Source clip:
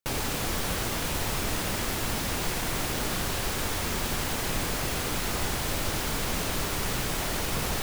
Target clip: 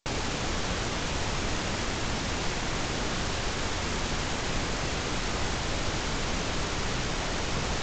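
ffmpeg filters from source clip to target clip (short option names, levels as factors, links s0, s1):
-ar 16000 -c:a g722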